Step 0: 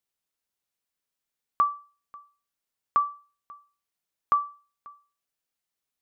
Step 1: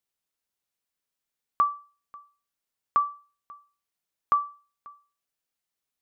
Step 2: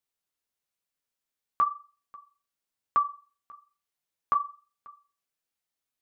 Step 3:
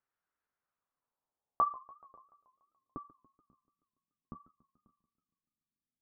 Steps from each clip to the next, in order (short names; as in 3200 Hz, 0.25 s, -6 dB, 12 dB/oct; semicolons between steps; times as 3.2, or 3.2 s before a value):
nothing audible
flange 1 Hz, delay 6.6 ms, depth 9.8 ms, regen -32%; gain +2 dB
low-pass sweep 1500 Hz -> 220 Hz, 0.54–3.43; warbling echo 0.144 s, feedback 61%, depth 193 cents, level -21.5 dB